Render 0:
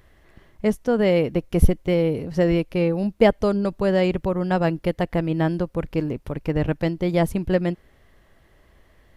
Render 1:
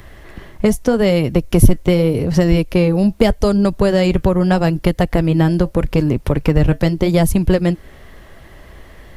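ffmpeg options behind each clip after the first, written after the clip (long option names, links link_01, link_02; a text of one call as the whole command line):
ffmpeg -i in.wav -filter_complex "[0:a]acrossover=split=120|4500[link_01][link_02][link_03];[link_02]acompressor=threshold=-28dB:ratio=6[link_04];[link_01][link_04][link_03]amix=inputs=3:normalize=0,flanger=delay=1:depth=4.5:regen=-75:speed=0.82:shape=sinusoidal,aeval=exprs='0.398*sin(PI/2*2.82*val(0)/0.398)':channel_layout=same,volume=7dB" out.wav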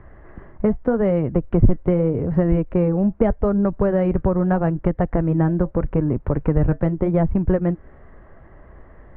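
ffmpeg -i in.wav -af "lowpass=frequency=1600:width=0.5412,lowpass=frequency=1600:width=1.3066,volume=-4.5dB" out.wav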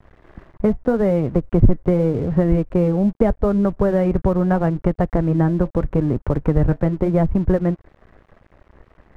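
ffmpeg -i in.wav -af "aeval=exprs='sgn(val(0))*max(abs(val(0))-0.00631,0)':channel_layout=same,volume=1.5dB" out.wav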